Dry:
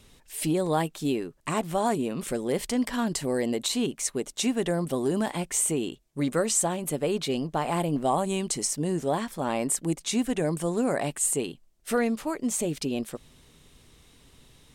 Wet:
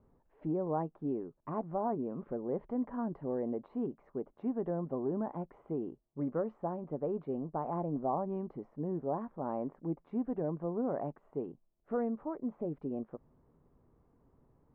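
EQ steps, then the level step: LPF 1100 Hz 24 dB/oct; low shelf 79 Hz -6.5 dB; -7.5 dB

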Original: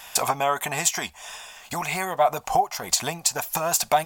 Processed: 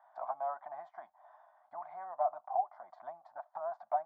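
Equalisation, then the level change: ladder band-pass 710 Hz, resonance 65%; air absorption 380 m; fixed phaser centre 1100 Hz, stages 4; -2.5 dB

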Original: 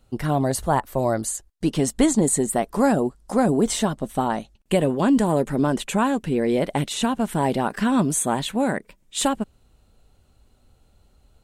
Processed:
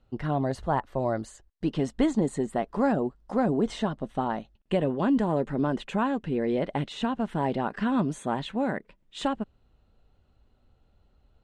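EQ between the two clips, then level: LPF 3300 Hz 12 dB/oct; notch 2300 Hz, Q 18; -5.5 dB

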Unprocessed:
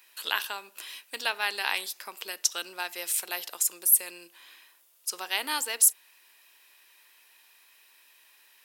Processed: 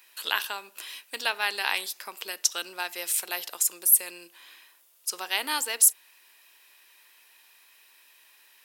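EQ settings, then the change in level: none; +1.5 dB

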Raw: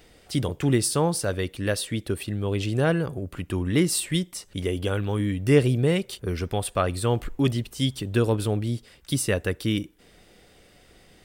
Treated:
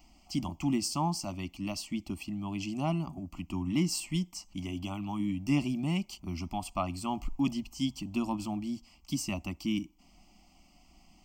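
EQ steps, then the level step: high shelf 8600 Hz -6.5 dB; fixed phaser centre 430 Hz, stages 6; fixed phaser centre 2500 Hz, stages 8; 0.0 dB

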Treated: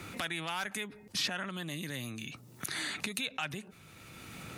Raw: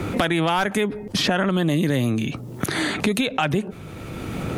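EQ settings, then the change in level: passive tone stack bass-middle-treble 5-5-5; low shelf 82 Hz -12 dB; notch 3200 Hz, Q 17; -1.0 dB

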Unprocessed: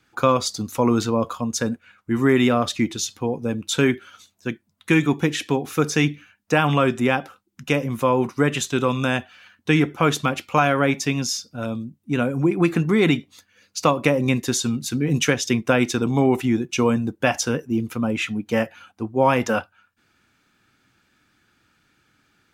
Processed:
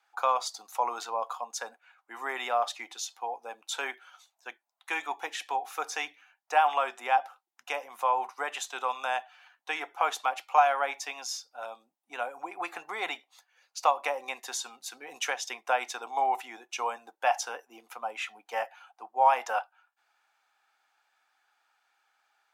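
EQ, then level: ladder high-pass 720 Hz, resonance 70%; +1.5 dB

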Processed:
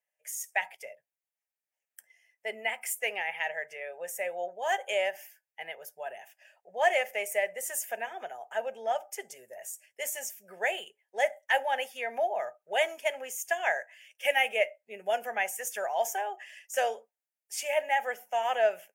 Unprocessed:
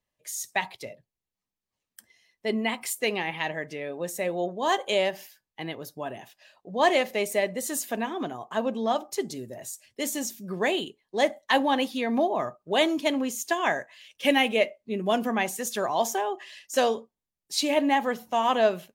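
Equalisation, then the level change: HPF 630 Hz 12 dB/oct; fixed phaser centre 1100 Hz, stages 6; 0.0 dB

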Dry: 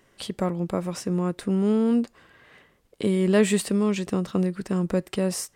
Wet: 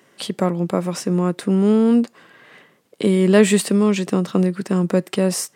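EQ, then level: HPF 140 Hz 24 dB/oct; +6.5 dB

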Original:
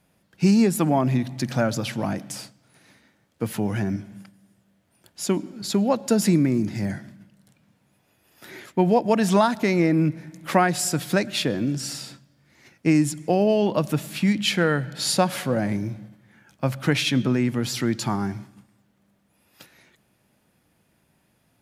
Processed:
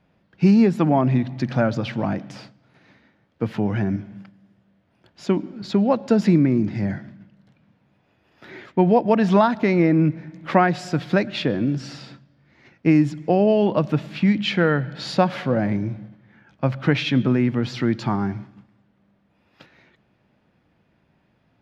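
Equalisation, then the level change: air absorption 230 m; +3.0 dB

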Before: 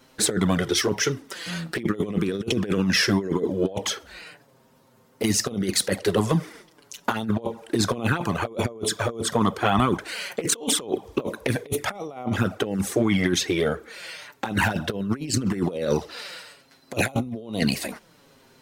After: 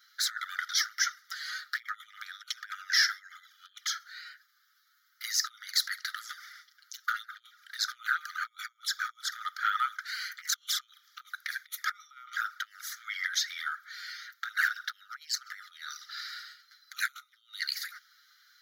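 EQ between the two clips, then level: dynamic EQ 3200 Hz, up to -5 dB, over -45 dBFS, Q 2.7; brick-wall FIR high-pass 1200 Hz; fixed phaser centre 2600 Hz, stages 6; 0.0 dB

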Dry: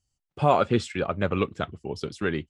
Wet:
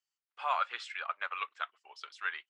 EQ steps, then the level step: HPF 1100 Hz 24 dB/oct; air absorption 64 m; high shelf 3900 Hz -10 dB; 0.0 dB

